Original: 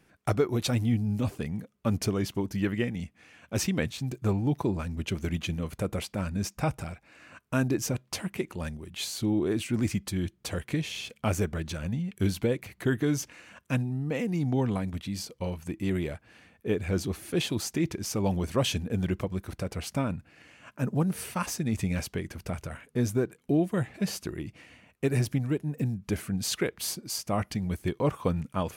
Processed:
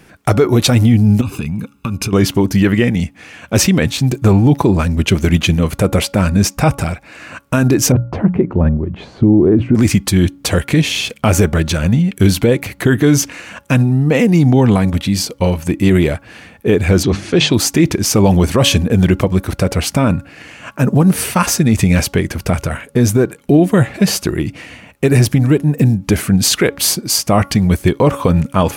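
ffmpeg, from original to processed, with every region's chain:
ffmpeg -i in.wav -filter_complex "[0:a]asettb=1/sr,asplit=3[link_01][link_02][link_03];[link_01]atrim=end=1.214[link_04];[link_02]atrim=start=1.21:end=2.13,asetpts=PTS-STARTPTS,afade=type=in:duration=0.004:curve=qsin,afade=type=out:start_time=0.916:duration=0.004:curve=qsin,equalizer=frequency=2800:width=3.6:gain=6.5,aecho=1:1:0.8:0.73,atrim=end_sample=40572,acompressor=threshold=-34dB:ratio=16:attack=3.2:release=140:knee=1:detection=peak[link_05];[link_03]atrim=start=2.126[link_06];[link_04][link_05]acrossfade=duration=0.004:curve1=hsin:curve2=qsin[link_07];[link_07][link_06]acrossfade=duration=0.004:curve1=qsin:curve2=hsin,asettb=1/sr,asplit=3[link_08][link_09][link_10];[link_08]atrim=end=7.924[link_11];[link_09]atrim=start=7.92:end=9.75,asetpts=PTS-STARTPTS,afade=type=in:duration=0.004:curve=qsin,afade=type=out:start_time=1.826:duration=0.004:curve=qsin,lowpass=1300,tiltshelf=frequency=730:gain=6,bandreject=frequency=60:width_type=h:width=6,bandreject=frequency=120:width_type=h:width=6,bandreject=frequency=180:width_type=h:width=6[link_12];[link_10]atrim=start=9.746[link_13];[link_11][link_12]acrossfade=duration=0.004:curve1=hsin:curve2=qsin[link_14];[link_14][link_13]acrossfade=duration=0.004:curve1=qsin:curve2=hsin,asettb=1/sr,asplit=3[link_15][link_16][link_17];[link_15]atrim=end=17.034[link_18];[link_16]atrim=start=17.03:end=17.54,asetpts=PTS-STARTPTS,afade=type=in:duration=0.004:curve=qsin,afade=type=out:start_time=0.506:duration=0.004:curve=qsin,lowpass=frequency=6600:width=0.5412,lowpass=frequency=6600:width=1.3066,bandreject=frequency=50:width_type=h:width=6,bandreject=frequency=100:width_type=h:width=6,bandreject=frequency=150:width_type=h:width=6,bandreject=frequency=200:width_type=h:width=6[link_19];[link_17]atrim=start=17.536[link_20];[link_18][link_19]acrossfade=duration=0.004:curve1=hsin:curve2=qsin[link_21];[link_21][link_20]acrossfade=duration=0.004:curve1=qsin:curve2=hsin,bandreject=frequency=280.6:width_type=h:width=4,bandreject=frequency=561.2:width_type=h:width=4,bandreject=frequency=841.8:width_type=h:width=4,bandreject=frequency=1122.4:width_type=h:width=4,bandreject=frequency=1403:width_type=h:width=4,alimiter=level_in=19.5dB:limit=-1dB:release=50:level=0:latency=1,volume=-1dB" out.wav

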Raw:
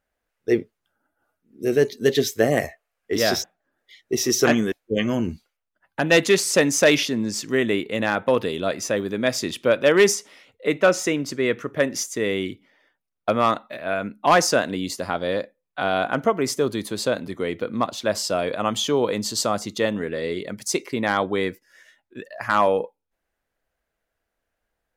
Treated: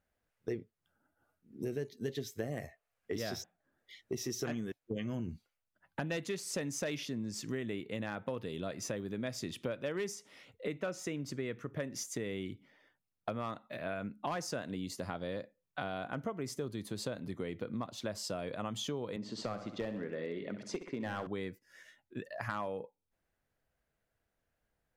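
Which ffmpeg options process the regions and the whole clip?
ffmpeg -i in.wav -filter_complex "[0:a]asettb=1/sr,asplit=3[link_01][link_02][link_03];[link_01]atrim=end=19.164[link_04];[link_02]atrim=start=19.16:end=21.27,asetpts=PTS-STARTPTS,afade=type=in:duration=0.004:curve=qsin,afade=type=out:start_time=2.106:duration=0.004:curve=qsin,highpass=200,lowpass=2600,aeval=exprs='clip(val(0),-1,0.106)':channel_layout=same,aecho=1:1:64|128|192|256|320:0.282|0.144|0.0733|0.0374|0.0191,atrim=end_sample=93051[link_05];[link_03]atrim=start=21.266[link_06];[link_04][link_05]acrossfade=duration=0.004:curve1=hsin:curve2=qsin[link_07];[link_07][link_06]acrossfade=duration=0.004:curve1=qsin:curve2=hsin,equalizer=frequency=120:width=0.79:gain=10,acompressor=threshold=-31dB:ratio=5,volume=-5.5dB" out.wav

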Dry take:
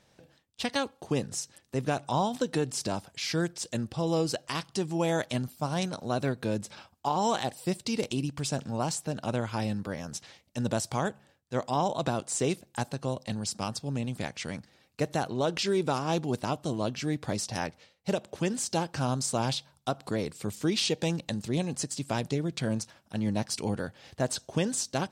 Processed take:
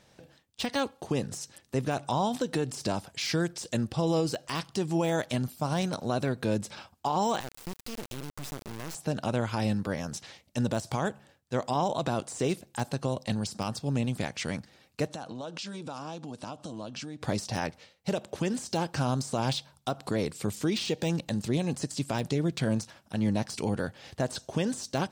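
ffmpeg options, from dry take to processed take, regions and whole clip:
ffmpeg -i in.wav -filter_complex "[0:a]asettb=1/sr,asplit=3[link_01][link_02][link_03];[link_01]atrim=end=7.404[link_04];[link_02]atrim=start=7.4:end=8.95,asetpts=PTS-STARTPTS,afade=type=in:duration=0.004:curve=qsin,afade=type=out:start_time=1.546:duration=0.004:curve=qsin,acompressor=threshold=-38dB:ratio=3:attack=3.2:release=140:knee=1:detection=peak,acrusher=bits=4:dc=4:mix=0:aa=0.000001[link_05];[link_03]atrim=start=8.946[link_06];[link_04][link_05]acrossfade=duration=0.004:curve1=hsin:curve2=qsin[link_07];[link_07][link_06]acrossfade=duration=0.004:curve1=qsin:curve2=hsin,asettb=1/sr,asplit=3[link_08][link_09][link_10];[link_08]atrim=end=15.074[link_11];[link_09]atrim=start=15.07:end=17.22,asetpts=PTS-STARTPTS,afade=type=in:duration=0.004:curve=qsin,afade=type=out:start_time=2.146:duration=0.004:curve=qsin,bandreject=frequency=390:width=6.3,acompressor=threshold=-37dB:ratio=10:attack=3.2:release=140:knee=1:detection=peak,highpass=110,equalizer=frequency=140:width_type=q:width=4:gain=-4,equalizer=frequency=390:width_type=q:width=4:gain=-4,equalizer=frequency=2000:width_type=q:width=4:gain=-7,lowpass=frequency=9600:width=0.5412,lowpass=frequency=9600:width=1.3066[link_12];[link_10]atrim=start=17.216[link_13];[link_11][link_12]acrossfade=duration=0.004:curve1=hsin:curve2=qsin[link_14];[link_14][link_13]acrossfade=duration=0.004:curve1=qsin:curve2=hsin,deesser=0.8,alimiter=limit=-22dB:level=0:latency=1:release=81,volume=3.5dB" out.wav

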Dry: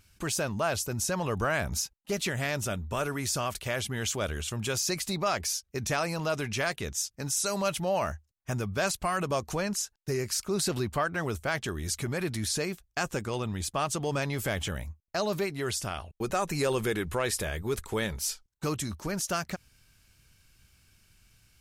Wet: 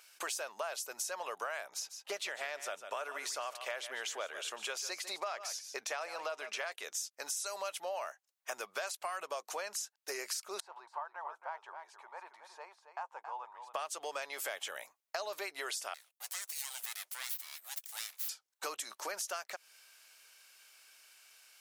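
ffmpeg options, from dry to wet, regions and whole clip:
ffmpeg -i in.wav -filter_complex "[0:a]asettb=1/sr,asplit=3[link_01][link_02][link_03];[link_01]atrim=end=1.674[link_04];[link_02]atrim=start=1.67:end=6.72,asetpts=PTS-STARTPTS,afade=type=in:duration=0.004:curve=qsin,afade=type=out:start_time=5.046:duration=0.004:curve=qsin,lowpass=frequency=3800:poles=1,aecho=1:1:148:0.2,atrim=end_sample=222705[link_05];[link_03]atrim=start=6.716[link_06];[link_04][link_05]acrossfade=duration=0.004:curve1=hsin:curve2=qsin[link_07];[link_07][link_06]acrossfade=duration=0.004:curve1=qsin:curve2=hsin,asettb=1/sr,asplit=3[link_08][link_09][link_10];[link_08]atrim=end=10.604[link_11];[link_09]atrim=start=10.6:end=13.74,asetpts=PTS-STARTPTS,afade=type=in:duration=0.004:curve=qsin,afade=type=out:start_time=3.136:duration=0.004:curve=qsin,bandpass=frequency=920:width_type=q:width=8,aecho=1:1:273:0.316,atrim=end_sample=138474[link_12];[link_10]atrim=start=13.736[link_13];[link_11][link_12]acrossfade=duration=0.004:curve1=hsin:curve2=qsin[link_14];[link_14][link_13]acrossfade=duration=0.004:curve1=qsin:curve2=hsin,asettb=1/sr,asplit=3[link_15][link_16][link_17];[link_15]atrim=end=15.944[link_18];[link_16]atrim=start=15.94:end=18.29,asetpts=PTS-STARTPTS,afade=type=in:duration=0.004:curve=qsin,afade=type=out:start_time=2.346:duration=0.004:curve=qsin,highpass=frequency=560:poles=1,aeval=exprs='abs(val(0))':channel_layout=same,aderivative[link_19];[link_17]atrim=start=18.286[link_20];[link_18][link_19]acrossfade=duration=0.004:curve1=hsin:curve2=qsin[link_21];[link_21][link_20]acrossfade=duration=0.004:curve1=qsin:curve2=hsin,highpass=frequency=550:width=0.5412,highpass=frequency=550:width=1.3066,acompressor=threshold=-42dB:ratio=6,volume=5dB" out.wav

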